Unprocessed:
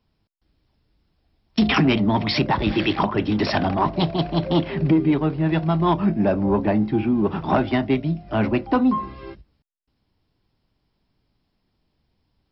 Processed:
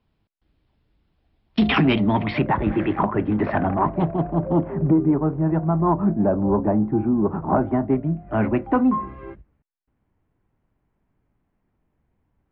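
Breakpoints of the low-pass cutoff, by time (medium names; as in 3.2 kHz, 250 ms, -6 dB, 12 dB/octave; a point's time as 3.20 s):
low-pass 24 dB/octave
1.96 s 3.7 kHz
2.68 s 1.9 kHz
3.93 s 1.9 kHz
4.40 s 1.3 kHz
7.79 s 1.3 kHz
8.41 s 2.1 kHz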